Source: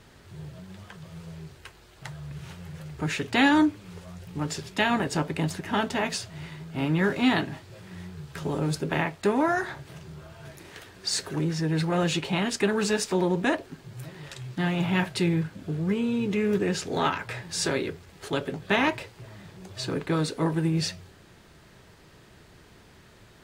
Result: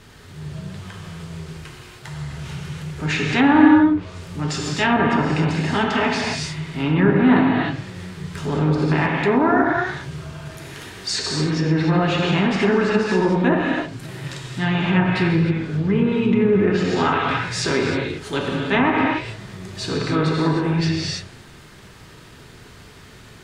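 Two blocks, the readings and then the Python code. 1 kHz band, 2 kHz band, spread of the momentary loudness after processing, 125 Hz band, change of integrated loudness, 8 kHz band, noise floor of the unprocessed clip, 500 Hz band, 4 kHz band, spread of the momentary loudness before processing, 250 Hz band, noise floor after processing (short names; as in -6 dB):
+8.0 dB, +7.0 dB, 18 LU, +8.5 dB, +7.5 dB, +1.5 dB, -54 dBFS, +7.5 dB, +5.0 dB, 20 LU, +9.0 dB, -44 dBFS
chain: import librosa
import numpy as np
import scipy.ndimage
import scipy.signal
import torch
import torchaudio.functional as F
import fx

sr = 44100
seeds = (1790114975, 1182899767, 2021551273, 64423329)

y = fx.transient(x, sr, attack_db=-6, sustain_db=2)
y = fx.peak_eq(y, sr, hz=620.0, db=-4.5, octaves=0.9)
y = fx.rev_gated(y, sr, seeds[0], gate_ms=330, shape='flat', drr_db=-1.5)
y = fx.env_lowpass_down(y, sr, base_hz=1500.0, full_db=-19.0)
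y = F.gain(torch.from_numpy(y), 7.0).numpy()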